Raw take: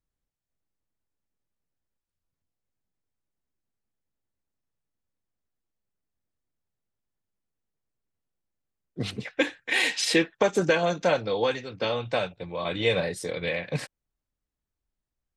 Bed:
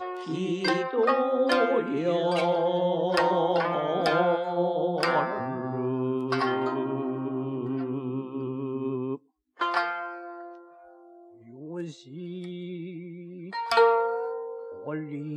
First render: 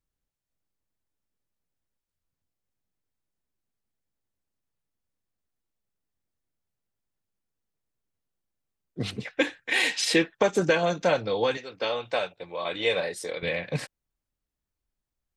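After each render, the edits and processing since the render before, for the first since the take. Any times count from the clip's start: 11.57–13.43 s: tone controls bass -14 dB, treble 0 dB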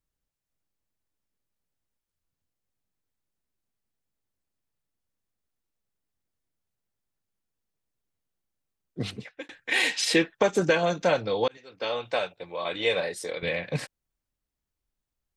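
8.99–9.49 s: fade out; 11.48–11.96 s: fade in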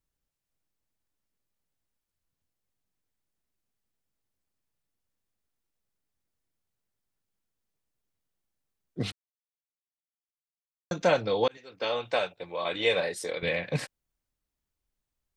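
9.12–10.91 s: mute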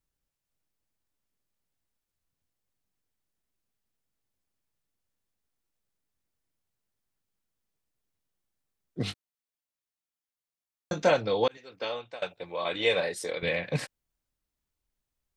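9.05–11.11 s: doubling 20 ms -7 dB; 11.70–12.22 s: fade out, to -23 dB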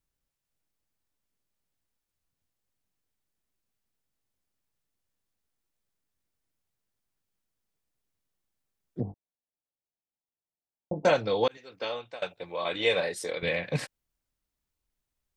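9.00–11.05 s: steep low-pass 930 Hz 72 dB/octave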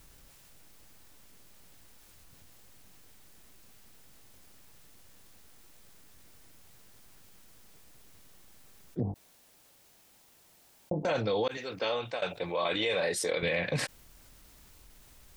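peak limiter -21.5 dBFS, peak gain reduction 11 dB; level flattener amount 50%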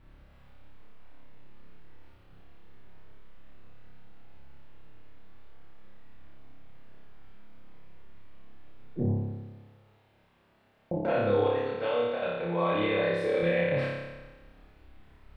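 distance through air 490 m; flutter echo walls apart 5 m, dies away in 1.2 s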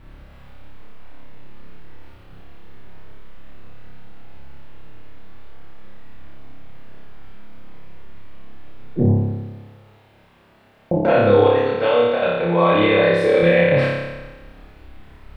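trim +12 dB

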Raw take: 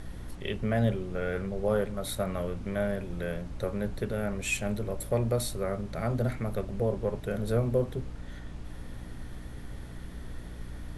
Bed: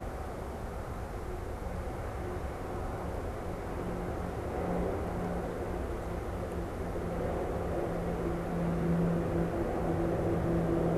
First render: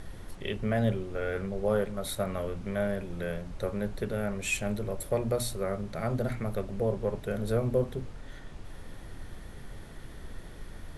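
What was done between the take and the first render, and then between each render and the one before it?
hum notches 60/120/180/240/300 Hz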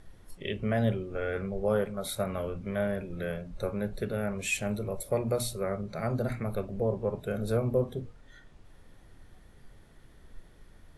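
noise print and reduce 11 dB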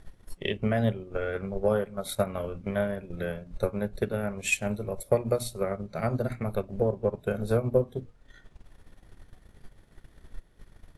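transient shaper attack +7 dB, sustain -7 dB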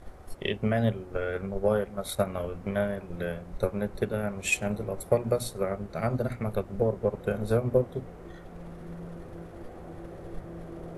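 add bed -12 dB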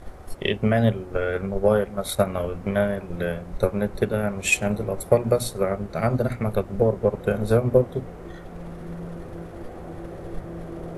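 trim +6 dB

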